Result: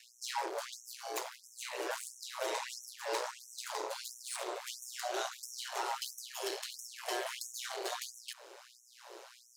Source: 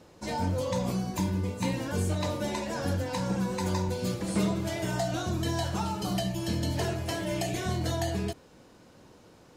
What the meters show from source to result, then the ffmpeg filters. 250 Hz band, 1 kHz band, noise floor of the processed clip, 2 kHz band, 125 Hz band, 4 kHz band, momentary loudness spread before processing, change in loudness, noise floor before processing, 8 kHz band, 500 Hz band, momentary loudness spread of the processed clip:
−23.5 dB, −5.0 dB, −62 dBFS, −4.0 dB, below −40 dB, −3.5 dB, 3 LU, −9.0 dB, −56 dBFS, −2.0 dB, −8.5 dB, 10 LU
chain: -af "alimiter=level_in=2dB:limit=-24dB:level=0:latency=1:release=490,volume=-2dB,areverse,acompressor=mode=upward:threshold=-53dB:ratio=2.5,areverse,aeval=exprs='val(0)*sin(2*PI*61*n/s)':channel_layout=same,aeval=exprs='0.0501*(cos(1*acos(clip(val(0)/0.0501,-1,1)))-cos(1*PI/2))+0.001*(cos(2*acos(clip(val(0)/0.0501,-1,1)))-cos(2*PI/2))+0.000794*(cos(4*acos(clip(val(0)/0.0501,-1,1)))-cos(4*PI/2))+0.0178*(cos(5*acos(clip(val(0)/0.0501,-1,1)))-cos(5*PI/2))':channel_layout=same,aeval=exprs='val(0)+0.002*(sin(2*PI*60*n/s)+sin(2*PI*2*60*n/s)/2+sin(2*PI*3*60*n/s)/3+sin(2*PI*4*60*n/s)/4+sin(2*PI*5*60*n/s)/5)':channel_layout=same,afftfilt=real='re*gte(b*sr/1024,310*pow(5600/310,0.5+0.5*sin(2*PI*1.5*pts/sr)))':imag='im*gte(b*sr/1024,310*pow(5600/310,0.5+0.5*sin(2*PI*1.5*pts/sr)))':win_size=1024:overlap=0.75,volume=1dB"

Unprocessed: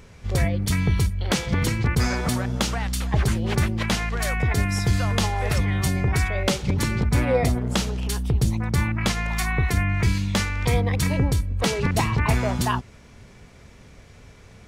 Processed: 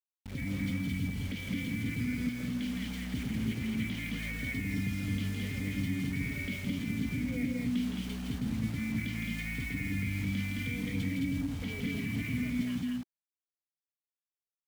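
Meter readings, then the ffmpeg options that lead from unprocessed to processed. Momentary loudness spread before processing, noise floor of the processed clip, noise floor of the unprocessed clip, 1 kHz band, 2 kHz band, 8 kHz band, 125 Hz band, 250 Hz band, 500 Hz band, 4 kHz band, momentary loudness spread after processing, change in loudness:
3 LU, below −85 dBFS, −48 dBFS, −25.5 dB, −10.0 dB, −18.0 dB, −13.5 dB, −5.5 dB, −21.0 dB, −13.5 dB, 3 LU, −11.0 dB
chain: -filter_complex "[0:a]asplit=3[link_01][link_02][link_03];[link_01]bandpass=frequency=270:width_type=q:width=8,volume=0dB[link_04];[link_02]bandpass=frequency=2290:width_type=q:width=8,volume=-6dB[link_05];[link_03]bandpass=frequency=3010:width_type=q:width=8,volume=-9dB[link_06];[link_04][link_05][link_06]amix=inputs=3:normalize=0,acrusher=bits=7:mix=0:aa=0.000001,equalizer=frequency=350:width_type=o:width=0.2:gain=-14,alimiter=level_in=8dB:limit=-24dB:level=0:latency=1,volume=-8dB,bass=frequency=250:gain=9,treble=frequency=4000:gain=-2,aecho=1:1:163.3|215.7:0.562|0.794"

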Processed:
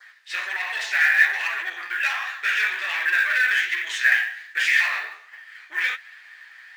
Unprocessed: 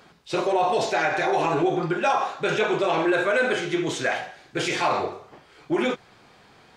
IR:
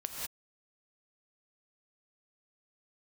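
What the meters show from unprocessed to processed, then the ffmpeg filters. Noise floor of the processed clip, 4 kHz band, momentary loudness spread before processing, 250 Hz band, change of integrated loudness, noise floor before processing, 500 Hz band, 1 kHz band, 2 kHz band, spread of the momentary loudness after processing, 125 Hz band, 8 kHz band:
−49 dBFS, +2.5 dB, 7 LU, below −30 dB, +2.5 dB, −54 dBFS, −25.0 dB, −10.0 dB, +9.5 dB, 11 LU, below −30 dB, −0.5 dB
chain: -af "adynamicequalizer=threshold=0.00562:dfrequency=2700:dqfactor=2.8:tfrequency=2700:tqfactor=2.8:attack=5:release=100:ratio=0.375:range=3:mode=boostabove:tftype=bell,flanger=delay=7.6:depth=9.1:regen=31:speed=1.3:shape=sinusoidal,asoftclip=type=tanh:threshold=-25dB,highpass=frequency=1800:width_type=q:width=12,acrusher=bits=7:mode=log:mix=0:aa=0.000001,volume=3dB"

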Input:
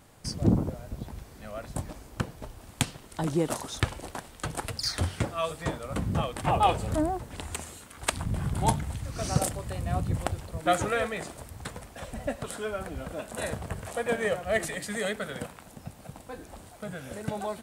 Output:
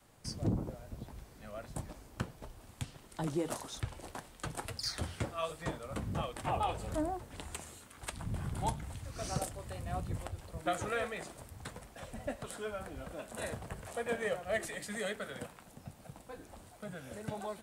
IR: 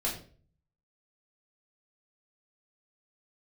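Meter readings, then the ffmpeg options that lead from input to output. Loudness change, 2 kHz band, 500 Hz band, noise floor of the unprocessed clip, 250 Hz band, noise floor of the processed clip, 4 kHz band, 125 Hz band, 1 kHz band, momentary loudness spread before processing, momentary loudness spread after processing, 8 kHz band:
−8.5 dB, −7.5 dB, −7.5 dB, −50 dBFS, −9.0 dB, −57 dBFS, −8.0 dB, −9.0 dB, −9.0 dB, 15 LU, 13 LU, −8.5 dB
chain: -filter_complex "[0:a]acrossover=split=130[link_01][link_02];[link_02]alimiter=limit=-16.5dB:level=0:latency=1:release=174[link_03];[link_01][link_03]amix=inputs=2:normalize=0,adynamicequalizer=threshold=0.00794:dfrequency=150:dqfactor=0.94:tfrequency=150:tqfactor=0.94:attack=5:release=100:ratio=0.375:range=2.5:mode=cutabove:tftype=bell,flanger=delay=5.3:depth=4:regen=-70:speed=1.6:shape=sinusoidal,volume=-2.5dB"

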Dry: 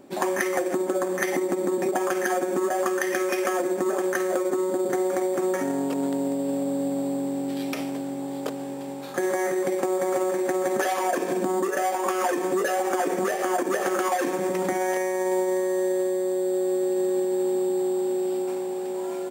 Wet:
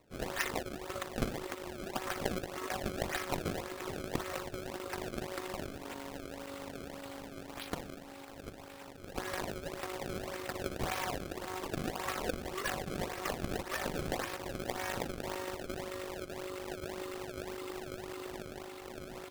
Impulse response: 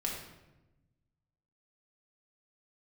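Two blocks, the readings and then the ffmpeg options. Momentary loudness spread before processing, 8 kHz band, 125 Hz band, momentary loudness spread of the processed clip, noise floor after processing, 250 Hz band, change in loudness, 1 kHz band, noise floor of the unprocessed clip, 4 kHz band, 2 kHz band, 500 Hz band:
5 LU, −11.5 dB, −1.5 dB, 9 LU, −49 dBFS, −16.0 dB, −14.0 dB, −13.0 dB, −32 dBFS, −2.5 dB, −9.5 dB, −17.0 dB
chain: -af "lowpass=5800,aderivative,acrusher=samples=27:mix=1:aa=0.000001:lfo=1:lforange=43.2:lforate=1.8,tremolo=f=50:d=0.519,volume=8dB"

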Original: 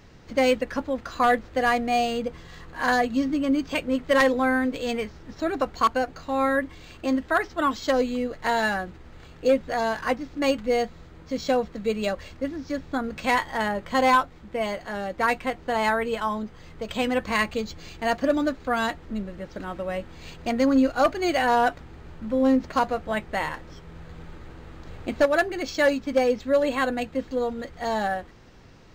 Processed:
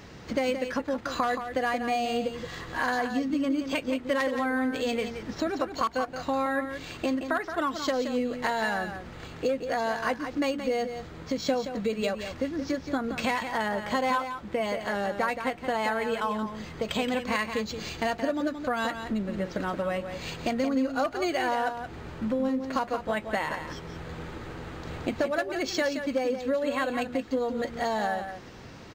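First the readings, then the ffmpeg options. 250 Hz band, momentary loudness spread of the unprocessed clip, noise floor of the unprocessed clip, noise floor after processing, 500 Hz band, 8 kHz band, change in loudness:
−3.5 dB, 13 LU, −47 dBFS, −44 dBFS, −4.0 dB, −1.5 dB, −4.5 dB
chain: -af "highpass=frequency=110:poles=1,acompressor=threshold=-33dB:ratio=5,aecho=1:1:174:0.376,volume=6.5dB"

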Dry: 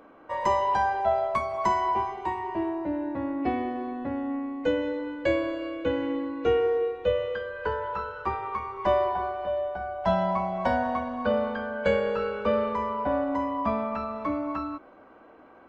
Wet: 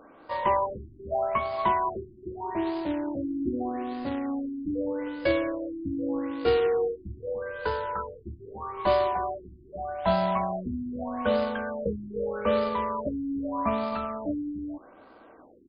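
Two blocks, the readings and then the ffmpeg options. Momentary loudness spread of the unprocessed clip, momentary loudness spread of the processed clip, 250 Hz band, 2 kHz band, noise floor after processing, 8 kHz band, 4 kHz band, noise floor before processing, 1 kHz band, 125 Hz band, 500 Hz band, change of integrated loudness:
7 LU, 12 LU, 0.0 dB, −3.0 dB, −53 dBFS, can't be measured, +0.5 dB, −52 dBFS, −2.5 dB, 0.0 dB, −1.5 dB, −1.5 dB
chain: -af "aresample=16000,acrusher=bits=3:mode=log:mix=0:aa=0.000001,aresample=44100,afftfilt=real='re*lt(b*sr/1024,350*pow(5100/350,0.5+0.5*sin(2*PI*0.81*pts/sr)))':imag='im*lt(b*sr/1024,350*pow(5100/350,0.5+0.5*sin(2*PI*0.81*pts/sr)))':win_size=1024:overlap=0.75"

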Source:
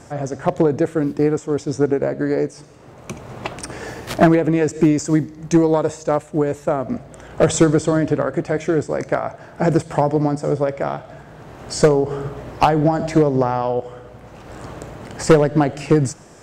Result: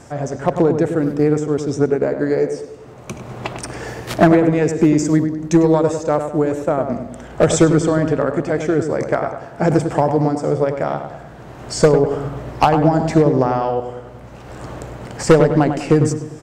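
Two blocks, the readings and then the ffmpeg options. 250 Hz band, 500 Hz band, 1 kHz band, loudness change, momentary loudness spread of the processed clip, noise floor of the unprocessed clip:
+2.0 dB, +2.0 dB, +2.0 dB, +2.0 dB, 18 LU, −43 dBFS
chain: -filter_complex "[0:a]asplit=2[link_01][link_02];[link_02]adelay=100,lowpass=frequency=1900:poles=1,volume=-7dB,asplit=2[link_03][link_04];[link_04]adelay=100,lowpass=frequency=1900:poles=1,volume=0.49,asplit=2[link_05][link_06];[link_06]adelay=100,lowpass=frequency=1900:poles=1,volume=0.49,asplit=2[link_07][link_08];[link_08]adelay=100,lowpass=frequency=1900:poles=1,volume=0.49,asplit=2[link_09][link_10];[link_10]adelay=100,lowpass=frequency=1900:poles=1,volume=0.49,asplit=2[link_11][link_12];[link_12]adelay=100,lowpass=frequency=1900:poles=1,volume=0.49[link_13];[link_01][link_03][link_05][link_07][link_09][link_11][link_13]amix=inputs=7:normalize=0,volume=1dB"

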